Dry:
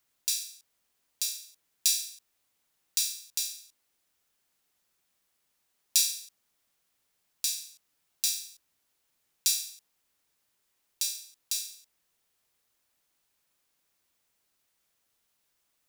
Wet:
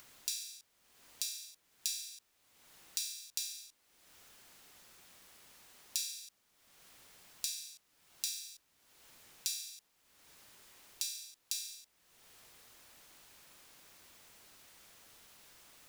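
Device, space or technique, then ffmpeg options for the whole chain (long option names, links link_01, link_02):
upward and downward compression: -af "highshelf=frequency=7600:gain=-5.5,acompressor=mode=upward:threshold=-50dB:ratio=2.5,acompressor=threshold=-40dB:ratio=4,volume=4dB"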